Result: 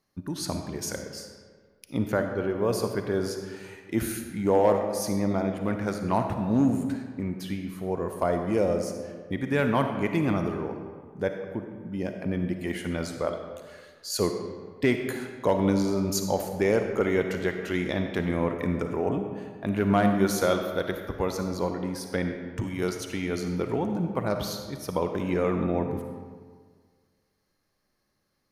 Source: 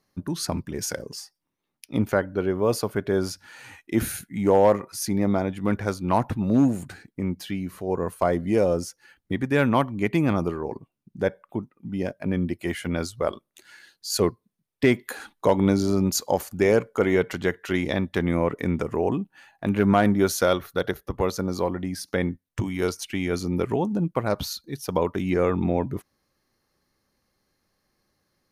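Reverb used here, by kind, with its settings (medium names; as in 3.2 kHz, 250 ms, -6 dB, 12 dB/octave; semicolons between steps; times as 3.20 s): algorithmic reverb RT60 1.7 s, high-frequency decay 0.65×, pre-delay 15 ms, DRR 5 dB; trim -4 dB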